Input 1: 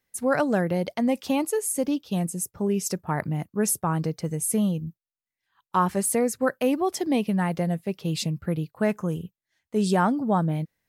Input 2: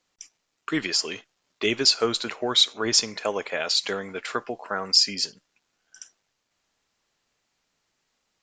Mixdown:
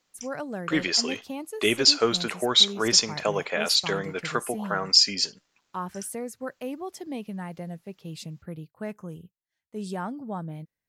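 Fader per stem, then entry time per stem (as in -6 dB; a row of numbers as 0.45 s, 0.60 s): -11.0 dB, +1.0 dB; 0.00 s, 0.00 s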